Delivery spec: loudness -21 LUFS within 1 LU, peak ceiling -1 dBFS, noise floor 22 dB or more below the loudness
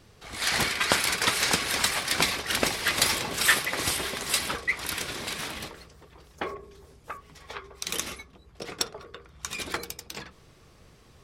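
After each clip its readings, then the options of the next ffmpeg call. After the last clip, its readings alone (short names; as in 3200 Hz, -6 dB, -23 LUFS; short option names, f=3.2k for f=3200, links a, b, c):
loudness -26.5 LUFS; peak -3.5 dBFS; loudness target -21.0 LUFS
-> -af "volume=5.5dB,alimiter=limit=-1dB:level=0:latency=1"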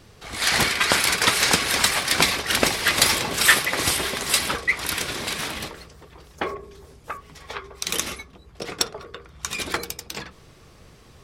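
loudness -21.0 LUFS; peak -1.0 dBFS; noise floor -50 dBFS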